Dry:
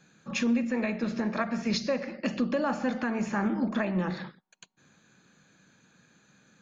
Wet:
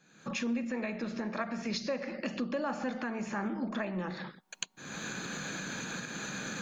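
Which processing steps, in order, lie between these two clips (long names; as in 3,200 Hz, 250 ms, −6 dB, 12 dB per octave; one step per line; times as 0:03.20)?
camcorder AGC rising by 49 dB per second
parametric band 67 Hz −9.5 dB 2.1 octaves
level −5 dB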